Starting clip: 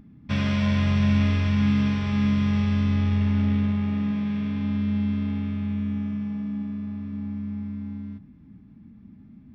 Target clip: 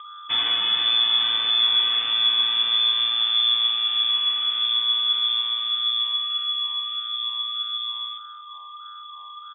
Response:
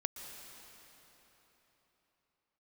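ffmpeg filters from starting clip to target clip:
-filter_complex "[0:a]highpass=93,asplit=2[s0][s1];[s1]alimiter=limit=0.112:level=0:latency=1,volume=1.26[s2];[s0][s2]amix=inputs=2:normalize=0,aeval=exprs='val(0)+0.02*sin(2*PI*2400*n/s)':c=same,flanger=delay=2.9:depth=7.8:regen=61:speed=1.6:shape=sinusoidal,asplit=2[s3][s4];[s4]aecho=0:1:217:0.112[s5];[s3][s5]amix=inputs=2:normalize=0,lowpass=f=3100:t=q:w=0.5098,lowpass=f=3100:t=q:w=0.6013,lowpass=f=3100:t=q:w=0.9,lowpass=f=3100:t=q:w=2.563,afreqshift=-3600"

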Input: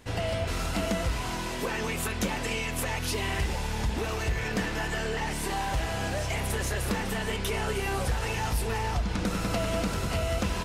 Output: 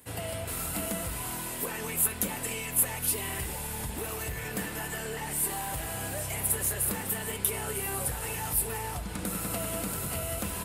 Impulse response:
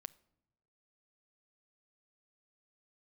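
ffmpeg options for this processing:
-filter_complex "[1:a]atrim=start_sample=2205[s0];[0:a][s0]afir=irnorm=-1:irlink=0,acrossover=split=100|3700[s1][s2][s3];[s3]aexciter=amount=7.3:drive=6.7:freq=8200[s4];[s1][s2][s4]amix=inputs=3:normalize=0,highpass=63"

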